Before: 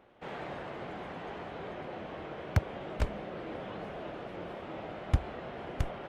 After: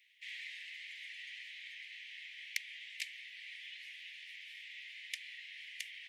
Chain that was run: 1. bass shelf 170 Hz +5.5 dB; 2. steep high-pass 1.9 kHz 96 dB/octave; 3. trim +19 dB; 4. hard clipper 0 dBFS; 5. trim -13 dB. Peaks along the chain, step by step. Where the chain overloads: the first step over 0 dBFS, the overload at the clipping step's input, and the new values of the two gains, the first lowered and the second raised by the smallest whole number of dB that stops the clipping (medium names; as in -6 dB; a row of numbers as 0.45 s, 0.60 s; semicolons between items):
-10.5 dBFS, -22.5 dBFS, -3.5 dBFS, -3.5 dBFS, -16.5 dBFS; nothing clips